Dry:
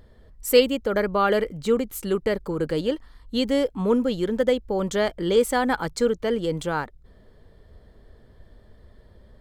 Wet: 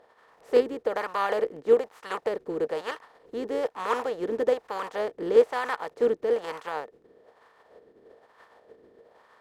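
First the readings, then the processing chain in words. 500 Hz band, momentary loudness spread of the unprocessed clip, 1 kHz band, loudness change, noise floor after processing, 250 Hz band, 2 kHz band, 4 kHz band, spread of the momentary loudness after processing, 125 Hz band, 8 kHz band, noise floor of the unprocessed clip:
−2.5 dB, 8 LU, −2.5 dB, −3.5 dB, −62 dBFS, −12.0 dB, −5.0 dB, −12.0 dB, 12 LU, below −15 dB, below −15 dB, −54 dBFS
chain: compressing power law on the bin magnitudes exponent 0.36
hollow resonant body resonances 460/1,800 Hz, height 9 dB
LFO wah 1.1 Hz 340–1,100 Hz, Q 2.2

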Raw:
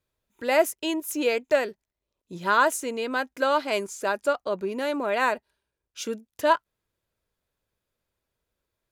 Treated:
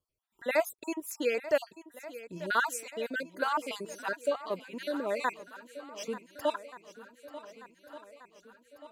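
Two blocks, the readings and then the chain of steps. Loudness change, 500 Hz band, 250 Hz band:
−7.5 dB, −7.0 dB, −8.0 dB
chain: time-frequency cells dropped at random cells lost 44%
feedback echo with a long and a short gap by turns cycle 1,481 ms, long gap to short 1.5 to 1, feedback 52%, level −15.5 dB
level −5 dB

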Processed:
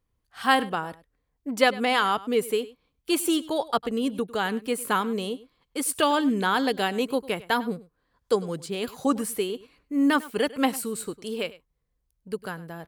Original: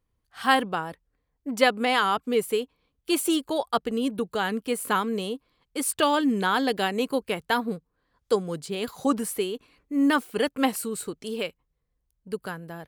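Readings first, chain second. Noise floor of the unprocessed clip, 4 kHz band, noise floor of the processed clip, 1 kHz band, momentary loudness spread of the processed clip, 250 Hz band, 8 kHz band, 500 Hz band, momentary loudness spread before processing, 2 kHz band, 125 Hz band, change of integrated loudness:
−77 dBFS, 0.0 dB, −76 dBFS, 0.0 dB, 12 LU, 0.0 dB, 0.0 dB, 0.0 dB, 12 LU, 0.0 dB, 0.0 dB, 0.0 dB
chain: single-tap delay 101 ms −19 dB

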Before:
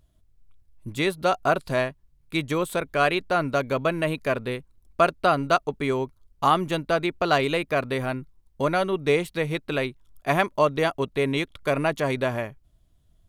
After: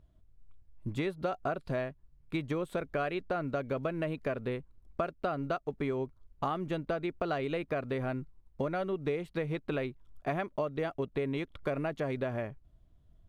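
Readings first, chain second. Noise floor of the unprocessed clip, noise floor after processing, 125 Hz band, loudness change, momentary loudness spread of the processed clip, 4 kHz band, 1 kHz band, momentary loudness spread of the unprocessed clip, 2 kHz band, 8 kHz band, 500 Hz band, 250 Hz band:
−62 dBFS, −63 dBFS, −7.0 dB, −10.5 dB, 5 LU, −16.5 dB, −13.0 dB, 9 LU, −13.0 dB, below −20 dB, −9.5 dB, −7.5 dB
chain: one scale factor per block 7 bits
low-pass filter 1,400 Hz 6 dB per octave
dynamic equaliser 980 Hz, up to −6 dB, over −42 dBFS, Q 3.7
downward compressor, threshold −30 dBFS, peak gain reduction 13.5 dB

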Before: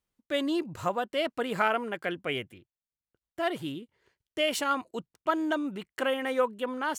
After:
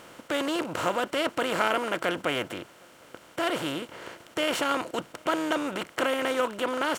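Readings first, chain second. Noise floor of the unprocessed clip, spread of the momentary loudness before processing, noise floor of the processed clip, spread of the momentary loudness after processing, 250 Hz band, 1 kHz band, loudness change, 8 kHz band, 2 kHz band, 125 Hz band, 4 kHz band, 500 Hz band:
below −85 dBFS, 10 LU, −53 dBFS, 10 LU, +1.0 dB, +2.0 dB, +2.0 dB, +4.5 dB, +3.0 dB, +1.5 dB, +3.5 dB, +2.0 dB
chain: compressor on every frequency bin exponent 0.4
slap from a distant wall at 130 metres, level −29 dB
level −3.5 dB

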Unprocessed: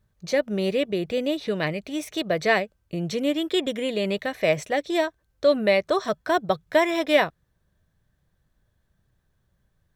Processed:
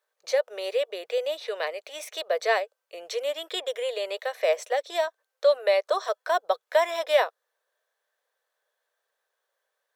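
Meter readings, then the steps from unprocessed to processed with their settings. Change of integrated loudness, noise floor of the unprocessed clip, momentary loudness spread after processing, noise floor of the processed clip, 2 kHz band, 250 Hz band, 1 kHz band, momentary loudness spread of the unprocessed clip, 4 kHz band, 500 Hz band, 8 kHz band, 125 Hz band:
−2.5 dB, −72 dBFS, 8 LU, −82 dBFS, −4.5 dB, below −20 dB, −1.0 dB, 7 LU, −2.5 dB, −1.5 dB, −1.0 dB, below −40 dB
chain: elliptic high-pass filter 470 Hz, stop band 50 dB
dynamic equaliser 2,200 Hz, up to −6 dB, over −40 dBFS, Q 1.6

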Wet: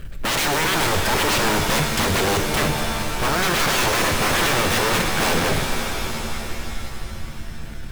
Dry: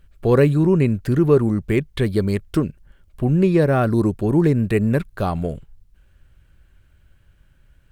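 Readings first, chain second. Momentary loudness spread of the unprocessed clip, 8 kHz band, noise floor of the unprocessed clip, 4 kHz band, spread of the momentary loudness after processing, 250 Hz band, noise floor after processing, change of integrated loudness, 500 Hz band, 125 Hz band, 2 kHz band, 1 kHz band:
9 LU, can't be measured, −56 dBFS, +19.5 dB, 15 LU, −7.5 dB, −32 dBFS, −1.0 dB, −4.5 dB, −7.5 dB, +12.0 dB, +9.0 dB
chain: wrap-around overflow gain 20.5 dB
leveller curve on the samples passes 5
reverb with rising layers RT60 3.3 s, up +7 semitones, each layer −2 dB, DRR 4 dB

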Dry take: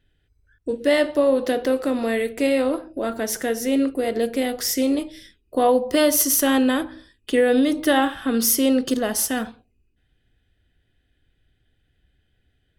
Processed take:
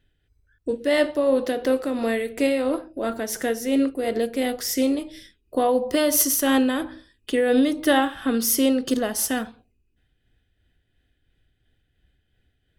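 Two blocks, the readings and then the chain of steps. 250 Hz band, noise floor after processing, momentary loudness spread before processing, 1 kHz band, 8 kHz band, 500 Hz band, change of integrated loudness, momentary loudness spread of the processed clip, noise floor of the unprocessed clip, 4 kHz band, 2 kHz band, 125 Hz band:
−1.5 dB, −70 dBFS, 9 LU, −2.0 dB, −2.0 dB, −2.0 dB, −1.5 dB, 10 LU, −68 dBFS, −2.0 dB, −1.5 dB, can't be measured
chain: amplitude tremolo 2.9 Hz, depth 36%

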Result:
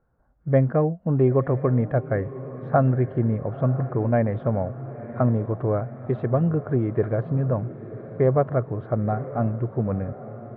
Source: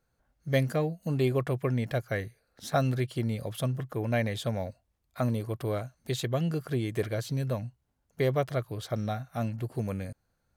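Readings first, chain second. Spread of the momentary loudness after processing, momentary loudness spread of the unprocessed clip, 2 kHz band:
11 LU, 8 LU, −1.0 dB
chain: low-pass filter 1,400 Hz 24 dB per octave
feedback delay with all-pass diffusion 972 ms, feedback 58%, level −14.5 dB
level +7.5 dB

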